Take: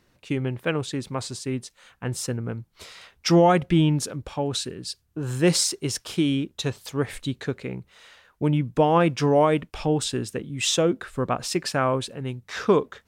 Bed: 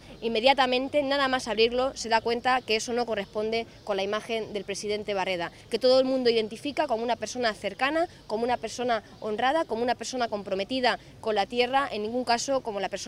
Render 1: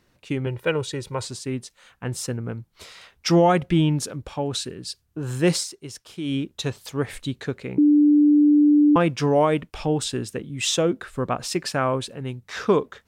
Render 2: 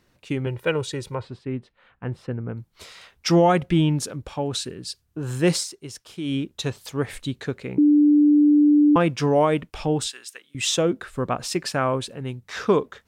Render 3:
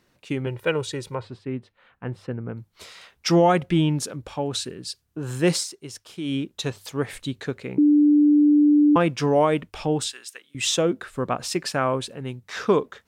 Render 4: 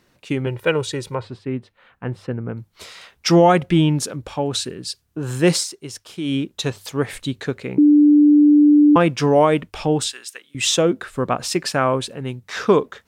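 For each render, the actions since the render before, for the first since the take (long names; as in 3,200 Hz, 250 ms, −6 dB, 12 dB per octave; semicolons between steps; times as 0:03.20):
0:00.46–0:01.25: comb filter 2.1 ms; 0:05.51–0:06.36: duck −10 dB, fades 0.15 s; 0:07.78–0:08.96: beep over 295 Hz −12 dBFS
0:01.15–0:02.57: high-frequency loss of the air 450 metres; 0:10.07–0:10.55: high-pass filter 1,500 Hz
low-shelf EQ 84 Hz −7 dB; mains-hum notches 50/100 Hz
level +4.5 dB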